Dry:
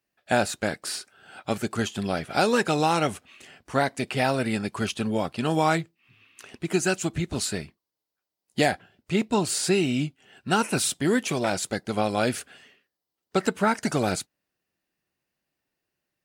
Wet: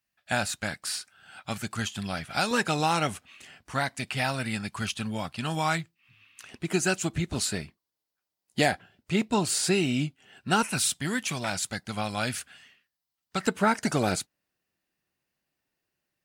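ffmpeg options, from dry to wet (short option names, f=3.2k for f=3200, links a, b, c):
-af "asetnsamples=n=441:p=0,asendcmd='2.51 equalizer g -7;3.74 equalizer g -13.5;6.49 equalizer g -3.5;10.63 equalizer g -14;13.47 equalizer g -2',equalizer=f=410:t=o:w=1.5:g=-14"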